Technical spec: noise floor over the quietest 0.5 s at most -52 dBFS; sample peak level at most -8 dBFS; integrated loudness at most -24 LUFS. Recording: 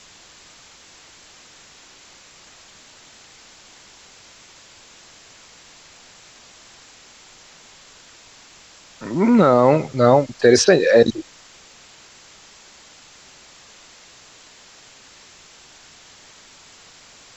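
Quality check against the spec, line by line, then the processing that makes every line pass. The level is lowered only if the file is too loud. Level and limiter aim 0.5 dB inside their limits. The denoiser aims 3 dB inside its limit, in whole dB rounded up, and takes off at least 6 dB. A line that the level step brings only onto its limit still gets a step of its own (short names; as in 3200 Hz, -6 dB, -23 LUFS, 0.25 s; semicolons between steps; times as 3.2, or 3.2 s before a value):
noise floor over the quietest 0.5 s -47 dBFS: fail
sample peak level -2.5 dBFS: fail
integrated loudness -15.5 LUFS: fail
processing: gain -9 dB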